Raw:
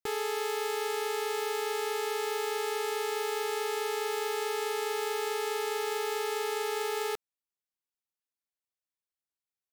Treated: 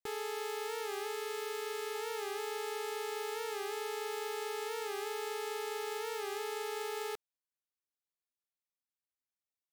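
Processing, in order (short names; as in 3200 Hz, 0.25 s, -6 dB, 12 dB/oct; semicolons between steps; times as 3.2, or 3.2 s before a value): 1.13–1.95 notch 840 Hz, Q 17; record warp 45 rpm, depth 100 cents; gain -6.5 dB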